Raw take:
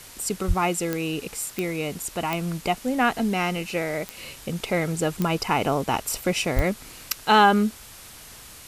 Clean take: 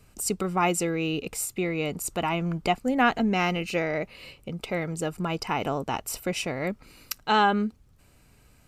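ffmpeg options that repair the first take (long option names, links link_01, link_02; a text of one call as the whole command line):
ffmpeg -i in.wav -filter_complex "[0:a]adeclick=threshold=4,asplit=3[link_01][link_02][link_03];[link_01]afade=type=out:start_time=0.47:duration=0.02[link_04];[link_02]highpass=frequency=140:width=0.5412,highpass=frequency=140:width=1.3066,afade=type=in:start_time=0.47:duration=0.02,afade=type=out:start_time=0.59:duration=0.02[link_05];[link_03]afade=type=in:start_time=0.59:duration=0.02[link_06];[link_04][link_05][link_06]amix=inputs=3:normalize=0,asplit=3[link_07][link_08][link_09];[link_07]afade=type=out:start_time=6.55:duration=0.02[link_10];[link_08]highpass=frequency=140:width=0.5412,highpass=frequency=140:width=1.3066,afade=type=in:start_time=6.55:duration=0.02,afade=type=out:start_time=6.67:duration=0.02[link_11];[link_09]afade=type=in:start_time=6.67:duration=0.02[link_12];[link_10][link_11][link_12]amix=inputs=3:normalize=0,afwtdn=0.0071,asetnsamples=nb_out_samples=441:pad=0,asendcmd='4.17 volume volume -5dB',volume=0dB" out.wav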